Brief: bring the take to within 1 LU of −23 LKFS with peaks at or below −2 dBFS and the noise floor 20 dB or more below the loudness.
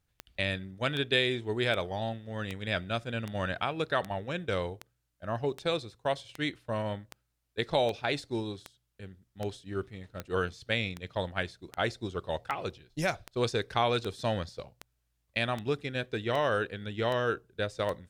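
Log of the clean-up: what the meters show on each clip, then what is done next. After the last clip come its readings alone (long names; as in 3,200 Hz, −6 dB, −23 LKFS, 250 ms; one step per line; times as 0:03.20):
number of clicks 24; integrated loudness −32.5 LKFS; sample peak −12.5 dBFS; target loudness −23.0 LKFS
→ click removal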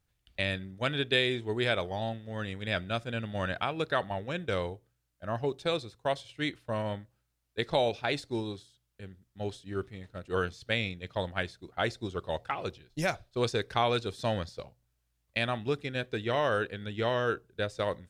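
number of clicks 0; integrated loudness −32.5 LKFS; sample peak −12.5 dBFS; target loudness −23.0 LKFS
→ level +9.5 dB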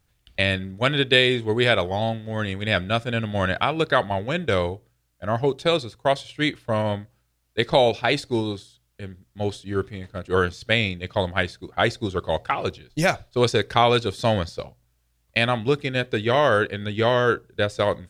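integrated loudness −23.0 LKFS; sample peak −3.0 dBFS; background noise floor −68 dBFS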